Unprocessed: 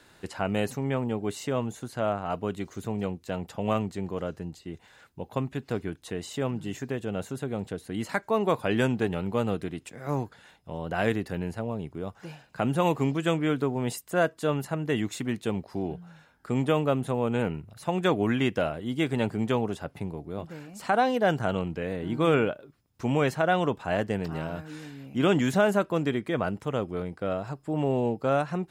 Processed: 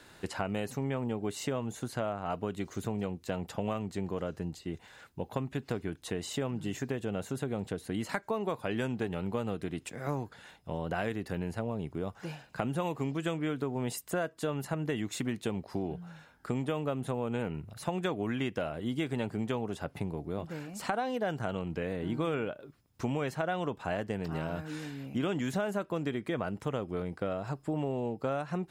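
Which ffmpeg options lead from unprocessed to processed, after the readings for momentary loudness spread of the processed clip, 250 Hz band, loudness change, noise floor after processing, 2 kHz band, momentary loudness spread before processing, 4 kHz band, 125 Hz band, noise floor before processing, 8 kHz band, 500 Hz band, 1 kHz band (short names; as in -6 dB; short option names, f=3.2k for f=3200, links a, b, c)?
6 LU, -5.5 dB, -6.5 dB, -58 dBFS, -7.0 dB, 12 LU, -5.5 dB, -5.0 dB, -59 dBFS, -2.0 dB, -6.5 dB, -7.0 dB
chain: -af "acompressor=threshold=-31dB:ratio=6,volume=1.5dB"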